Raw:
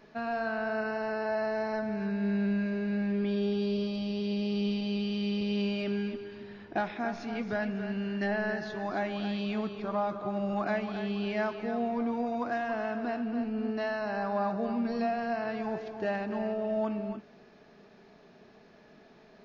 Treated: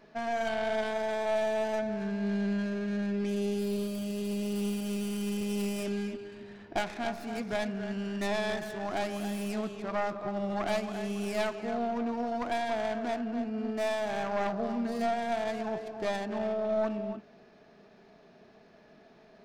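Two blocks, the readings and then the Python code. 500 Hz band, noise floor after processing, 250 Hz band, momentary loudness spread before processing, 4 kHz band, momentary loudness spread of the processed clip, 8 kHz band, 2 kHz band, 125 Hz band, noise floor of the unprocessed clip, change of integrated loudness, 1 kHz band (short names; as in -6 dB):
+1.0 dB, -57 dBFS, -2.0 dB, 4 LU, +0.5 dB, 5 LU, n/a, -1.5 dB, -1.5 dB, -57 dBFS, -0.5 dB, +0.5 dB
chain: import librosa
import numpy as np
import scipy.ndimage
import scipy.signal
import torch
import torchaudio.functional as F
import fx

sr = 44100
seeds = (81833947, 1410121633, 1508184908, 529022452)

y = fx.tracing_dist(x, sr, depth_ms=0.31)
y = fx.peak_eq(y, sr, hz=660.0, db=4.5, octaves=0.2)
y = F.gain(torch.from_numpy(y), -1.5).numpy()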